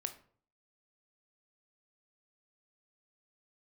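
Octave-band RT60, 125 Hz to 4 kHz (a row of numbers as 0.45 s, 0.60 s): 0.70 s, 0.55 s, 0.55 s, 0.50 s, 0.40 s, 0.30 s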